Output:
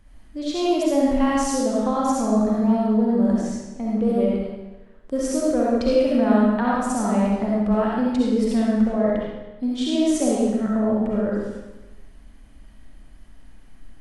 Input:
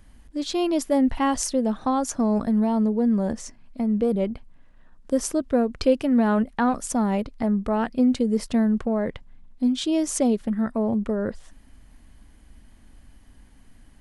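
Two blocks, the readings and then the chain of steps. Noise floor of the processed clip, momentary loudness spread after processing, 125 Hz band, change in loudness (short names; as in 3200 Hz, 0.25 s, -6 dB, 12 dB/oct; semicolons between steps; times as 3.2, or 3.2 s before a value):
-46 dBFS, 10 LU, n/a, +2.5 dB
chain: high shelf 5700 Hz -5.5 dB; digital reverb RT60 1.1 s, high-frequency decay 0.95×, pre-delay 25 ms, DRR -5.5 dB; gain -3.5 dB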